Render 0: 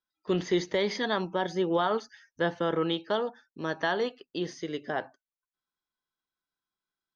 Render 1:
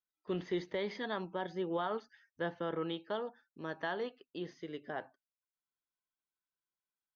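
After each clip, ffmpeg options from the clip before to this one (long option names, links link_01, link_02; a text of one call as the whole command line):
ffmpeg -i in.wav -af "lowpass=3600,volume=-9dB" out.wav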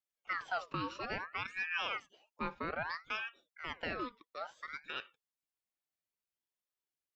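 ffmpeg -i in.wav -af "aeval=exprs='val(0)*sin(2*PI*1400*n/s+1400*0.5/0.6*sin(2*PI*0.6*n/s))':channel_layout=same,volume=1dB" out.wav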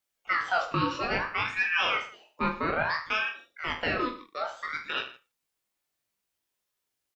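ffmpeg -i in.wav -af "aecho=1:1:20|45|76.25|115.3|164.1:0.631|0.398|0.251|0.158|0.1,volume=8.5dB" out.wav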